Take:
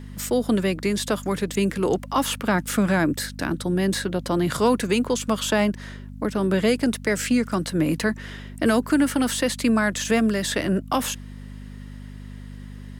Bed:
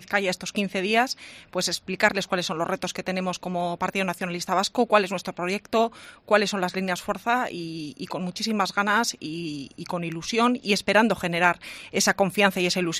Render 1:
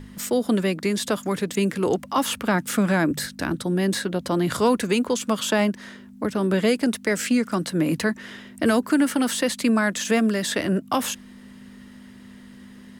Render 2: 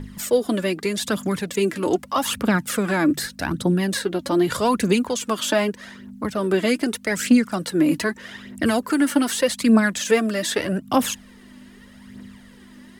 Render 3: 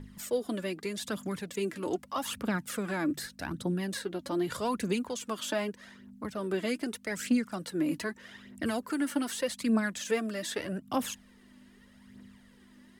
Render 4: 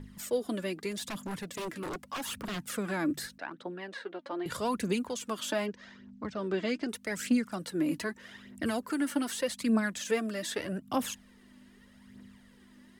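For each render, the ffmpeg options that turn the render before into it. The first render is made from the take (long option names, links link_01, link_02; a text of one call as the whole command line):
ffmpeg -i in.wav -af "bandreject=frequency=50:width_type=h:width=4,bandreject=frequency=100:width_type=h:width=4,bandreject=frequency=150:width_type=h:width=4" out.wav
ffmpeg -i in.wav -af "aphaser=in_gain=1:out_gain=1:delay=3.6:decay=0.55:speed=0.82:type=triangular" out.wav
ffmpeg -i in.wav -af "volume=-11.5dB" out.wav
ffmpeg -i in.wav -filter_complex "[0:a]asettb=1/sr,asplit=3[link_01][link_02][link_03];[link_01]atrim=end=0.914[link_04];[link_02]atrim=start=0.91:end=2.7,asetpts=PTS-STARTPTS,afade=type=in:duration=0.004:curve=qsin,afade=type=out:start_time=1.786:duration=0.004:curve=qsin,aeval=exprs='0.0282*(abs(mod(val(0)/0.0282+3,4)-2)-1)':channel_layout=same[link_05];[link_03]atrim=start=2.696[link_06];[link_04][link_05]acrossfade=duration=0.004:curve1=hsin:curve2=qsin[link_07];[link_07][link_06]acrossfade=duration=0.004:curve1=qsin:curve2=hsin,asettb=1/sr,asplit=3[link_08][link_09][link_10];[link_08]atrim=end=3.384[link_11];[link_09]atrim=start=3.38:end=4.46,asetpts=PTS-STARTPTS,afade=type=in:duration=0.004:curve=qsin,afade=type=out:start_time=1.076:duration=0.004:curve=qsin,highpass=460,lowpass=2600[link_12];[link_10]atrim=start=4.456[link_13];[link_11][link_12]acrossfade=duration=0.004:curve1=hsin:curve2=qsin[link_14];[link_14][link_13]acrossfade=duration=0.004:curve1=qsin:curve2=hsin,asettb=1/sr,asplit=3[link_15][link_16][link_17];[link_15]atrim=end=5.664[link_18];[link_16]atrim=start=5.66:end=6.89,asetpts=PTS-STARTPTS,afade=type=in:duration=0.004:curve=qsin,afade=type=out:start_time=1.226:duration=0.004:curve=qsin,lowpass=frequency=6300:width=0.5412,lowpass=frequency=6300:width=1.3066[link_19];[link_17]atrim=start=6.886[link_20];[link_18][link_19]acrossfade=duration=0.004:curve1=hsin:curve2=qsin[link_21];[link_21][link_20]acrossfade=duration=0.004:curve1=qsin:curve2=hsin" out.wav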